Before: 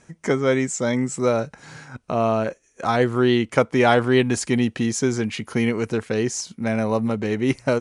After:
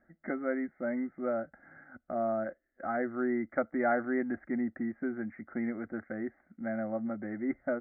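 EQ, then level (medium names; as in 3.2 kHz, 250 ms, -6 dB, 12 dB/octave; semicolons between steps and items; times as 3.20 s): rippled Chebyshev low-pass 2.1 kHz, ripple 3 dB; distance through air 170 m; static phaser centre 660 Hz, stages 8; -8.0 dB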